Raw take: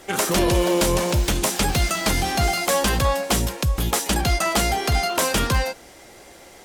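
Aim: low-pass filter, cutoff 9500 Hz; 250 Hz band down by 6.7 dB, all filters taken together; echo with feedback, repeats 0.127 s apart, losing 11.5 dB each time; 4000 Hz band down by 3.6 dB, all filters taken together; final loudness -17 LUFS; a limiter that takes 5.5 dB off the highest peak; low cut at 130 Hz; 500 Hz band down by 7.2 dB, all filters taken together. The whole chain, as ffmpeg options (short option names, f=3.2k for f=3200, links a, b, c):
-af "highpass=130,lowpass=9.5k,equalizer=f=250:t=o:g=-6.5,equalizer=f=500:t=o:g=-7.5,equalizer=f=4k:t=o:g=-4.5,alimiter=limit=-17dB:level=0:latency=1,aecho=1:1:127|254|381:0.266|0.0718|0.0194,volume=9.5dB"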